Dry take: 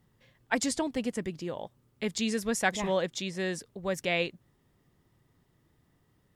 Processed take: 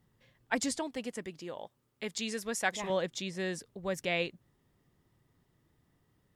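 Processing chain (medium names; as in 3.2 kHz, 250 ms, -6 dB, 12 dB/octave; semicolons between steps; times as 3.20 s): 0.76–2.90 s: bass shelf 250 Hz -10.5 dB; trim -3 dB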